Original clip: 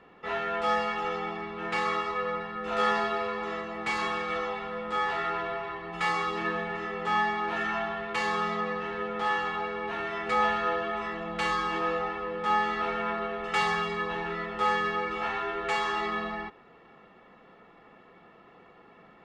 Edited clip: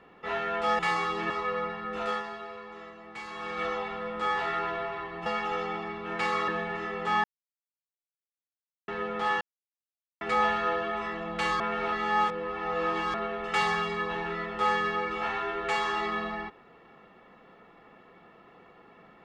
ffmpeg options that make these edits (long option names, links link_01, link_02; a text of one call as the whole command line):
ffmpeg -i in.wav -filter_complex "[0:a]asplit=13[link_01][link_02][link_03][link_04][link_05][link_06][link_07][link_08][link_09][link_10][link_11][link_12][link_13];[link_01]atrim=end=0.792[link_14];[link_02]atrim=start=5.968:end=6.482[link_15];[link_03]atrim=start=2.008:end=2.94,asetpts=PTS-STARTPTS,afade=type=out:start_time=0.632:duration=0.3:silence=0.281838[link_16];[link_04]atrim=start=2.94:end=4.05,asetpts=PTS-STARTPTS,volume=-11dB[link_17];[link_05]atrim=start=4.05:end=5.972,asetpts=PTS-STARTPTS,afade=type=in:duration=0.3:silence=0.281838[link_18];[link_06]atrim=start=0.788:end=2.012[link_19];[link_07]atrim=start=6.478:end=7.24,asetpts=PTS-STARTPTS,afade=type=out:start_time=0.758:duration=0.004:curve=hsin[link_20];[link_08]atrim=start=7.24:end=8.88,asetpts=PTS-STARTPTS,volume=0[link_21];[link_09]atrim=start=8.88:end=9.41,asetpts=PTS-STARTPTS,afade=type=in:duration=0.004:curve=hsin,afade=type=out:start_time=0.526:duration=0.004:curve=hsin[link_22];[link_10]atrim=start=9.41:end=10.21,asetpts=PTS-STARTPTS,volume=0[link_23];[link_11]atrim=start=10.21:end=11.602,asetpts=PTS-STARTPTS,afade=type=in:duration=0.004:curve=hsin[link_24];[link_12]atrim=start=11.598:end=13.142,asetpts=PTS-STARTPTS,areverse[link_25];[link_13]atrim=start=13.138[link_26];[link_14][link_15]acrossfade=duration=0.004:curve1=hsin:curve2=hsin[link_27];[link_16][link_17][link_18]concat=n=3:v=0:a=1[link_28];[link_27][link_28]acrossfade=duration=0.004:curve1=hsin:curve2=hsin[link_29];[link_29][link_19]acrossfade=duration=0.004:curve1=hsin:curve2=hsin[link_30];[link_20][link_21][link_22][link_23][link_24]concat=n=5:v=0:a=1[link_31];[link_30][link_31]acrossfade=duration=0.004:curve1=hsin:curve2=hsin[link_32];[link_32][link_25]acrossfade=duration=0.004:curve1=hsin:curve2=hsin[link_33];[link_33][link_26]acrossfade=duration=0.004:curve1=hsin:curve2=hsin" out.wav